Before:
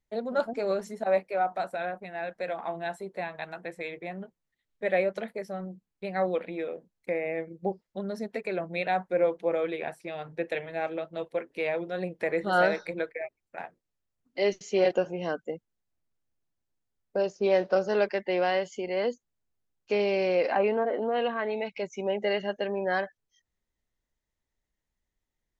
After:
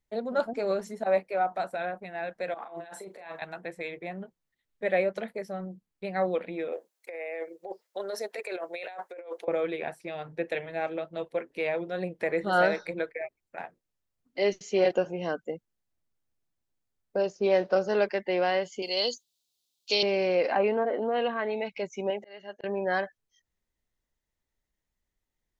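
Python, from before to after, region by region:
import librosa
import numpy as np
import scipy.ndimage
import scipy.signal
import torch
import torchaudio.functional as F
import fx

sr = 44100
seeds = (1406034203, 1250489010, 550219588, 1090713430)

y = fx.chain(x, sr, fx.highpass(hz=340.0, slope=12),
    fx.over_compress(threshold_db=-43.0, ratio=-1.0),
    fx.doubler(ms=37.0, db=-8.5), at=(2.54, 3.42))
y = fx.chain(y, sr, fx.highpass(hz=420.0, slope=24),
    fx.high_shelf(hz=5100.0, db=7.0),
    fx.over_compress(threshold_db=-37.0, ratio=-1.0), at=(6.72, 9.48))
y = fx.chain(y, sr, fx.highpass(hz=430.0, slope=6),
    fx.high_shelf_res(hz=2600.0, db=13.5, q=3.0), at=(18.82, 20.03))
y = fx.chain(y, sr, fx.low_shelf(hz=230.0, db=-12.0),
    fx.auto_swell(attack_ms=648.0), at=(22.1, 22.64))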